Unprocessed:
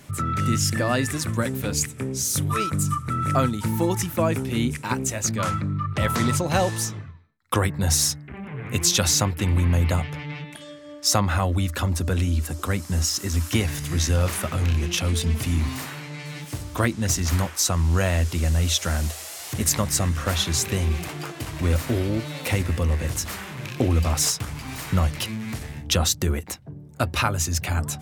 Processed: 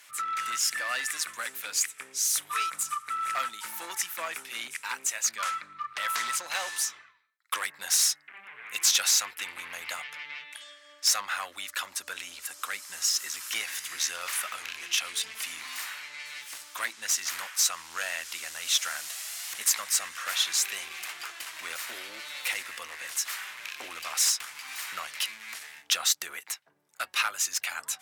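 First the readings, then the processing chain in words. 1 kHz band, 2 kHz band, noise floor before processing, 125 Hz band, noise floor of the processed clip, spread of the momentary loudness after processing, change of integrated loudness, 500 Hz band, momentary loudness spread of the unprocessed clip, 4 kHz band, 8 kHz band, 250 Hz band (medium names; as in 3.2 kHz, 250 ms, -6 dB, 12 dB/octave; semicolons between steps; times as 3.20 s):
-6.0 dB, -1.0 dB, -41 dBFS, under -40 dB, -56 dBFS, 13 LU, -5.5 dB, -20.0 dB, 12 LU, -1.5 dB, -1.5 dB, -32.5 dB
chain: one-sided clip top -19 dBFS; Chebyshev high-pass 1.6 kHz, order 2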